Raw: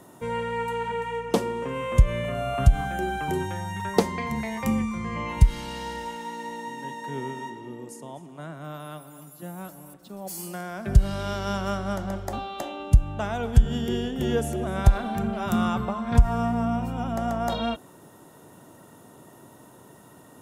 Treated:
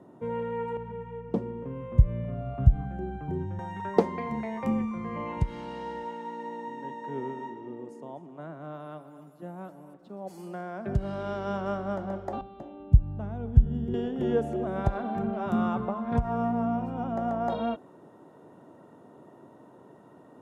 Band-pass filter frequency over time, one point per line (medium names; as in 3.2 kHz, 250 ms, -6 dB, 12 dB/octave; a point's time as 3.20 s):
band-pass filter, Q 0.58
280 Hz
from 0.77 s 110 Hz
from 3.59 s 450 Hz
from 12.41 s 100 Hz
from 13.94 s 430 Hz